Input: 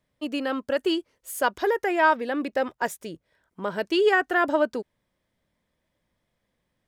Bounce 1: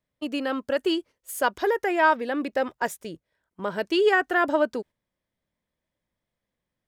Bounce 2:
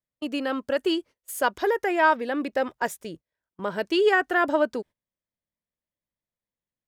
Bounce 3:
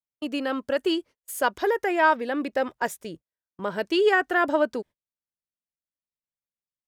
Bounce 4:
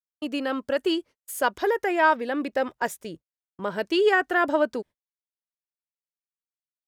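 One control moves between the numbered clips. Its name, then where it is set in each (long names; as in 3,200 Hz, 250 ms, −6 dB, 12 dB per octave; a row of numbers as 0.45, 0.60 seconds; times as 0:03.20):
noise gate, range: −8, −20, −32, −45 decibels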